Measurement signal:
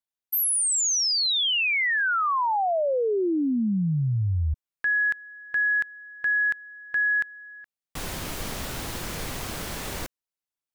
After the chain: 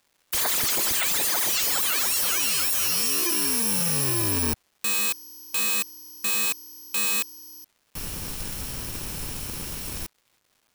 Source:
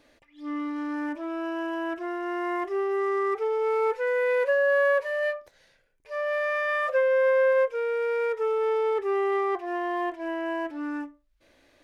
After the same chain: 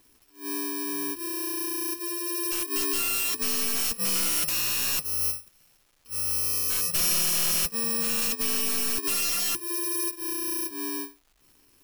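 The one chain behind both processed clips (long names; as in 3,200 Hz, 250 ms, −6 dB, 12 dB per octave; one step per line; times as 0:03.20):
samples in bit-reversed order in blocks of 64 samples
surface crackle 560 per second −53 dBFS
wrap-around overflow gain 21 dB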